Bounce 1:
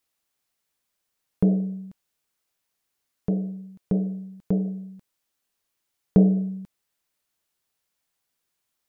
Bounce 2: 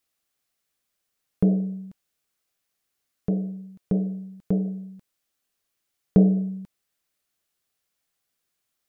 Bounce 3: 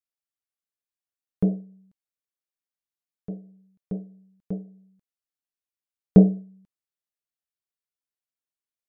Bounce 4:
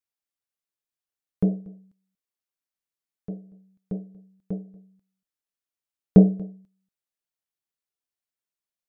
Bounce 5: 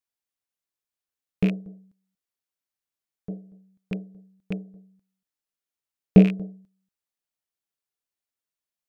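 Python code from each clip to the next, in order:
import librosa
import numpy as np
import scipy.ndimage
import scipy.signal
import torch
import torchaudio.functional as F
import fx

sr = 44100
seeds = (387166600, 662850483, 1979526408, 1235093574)

y1 = fx.notch(x, sr, hz=930.0, q=7.7)
y2 = fx.upward_expand(y1, sr, threshold_db=-28.0, expansion=2.5)
y2 = F.gain(torch.from_numpy(y2), 5.5).numpy()
y3 = y2 + 10.0 ** (-23.5 / 20.0) * np.pad(y2, (int(236 * sr / 1000.0), 0))[:len(y2)]
y4 = fx.rattle_buzz(y3, sr, strikes_db=-25.0, level_db=-21.0)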